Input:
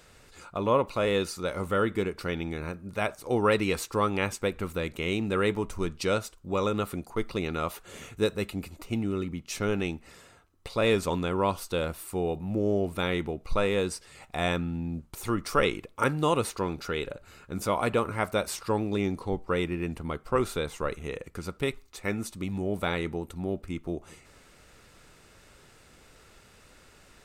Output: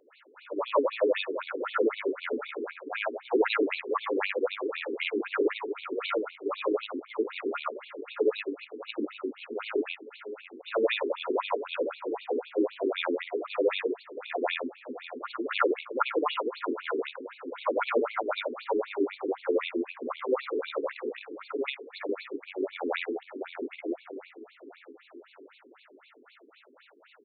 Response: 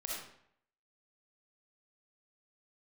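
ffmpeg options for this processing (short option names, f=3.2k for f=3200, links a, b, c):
-filter_complex "[0:a]afftfilt=real='re':imag='-im':win_size=8192:overlap=0.75,asplit=2[a][b];[b]acrusher=bits=3:mode=log:mix=0:aa=0.000001,volume=-4dB[c];[a][c]amix=inputs=2:normalize=0,asplit=2[d][e];[e]adelay=627,lowpass=f=4.6k:p=1,volume=-12.5dB,asplit=2[f][g];[g]adelay=627,lowpass=f=4.6k:p=1,volume=0.55,asplit=2[h][i];[i]adelay=627,lowpass=f=4.6k:p=1,volume=0.55,asplit=2[j][k];[k]adelay=627,lowpass=f=4.6k:p=1,volume=0.55,asplit=2[l][m];[m]adelay=627,lowpass=f=4.6k:p=1,volume=0.55,asplit=2[n][o];[o]adelay=627,lowpass=f=4.6k:p=1,volume=0.55[p];[d][f][h][j][l][n][p]amix=inputs=7:normalize=0,afftfilt=real='re*between(b*sr/1024,310*pow(3200/310,0.5+0.5*sin(2*PI*3.9*pts/sr))/1.41,310*pow(3200/310,0.5+0.5*sin(2*PI*3.9*pts/sr))*1.41)':imag='im*between(b*sr/1024,310*pow(3200/310,0.5+0.5*sin(2*PI*3.9*pts/sr))/1.41,310*pow(3200/310,0.5+0.5*sin(2*PI*3.9*pts/sr))*1.41)':win_size=1024:overlap=0.75,volume=5.5dB"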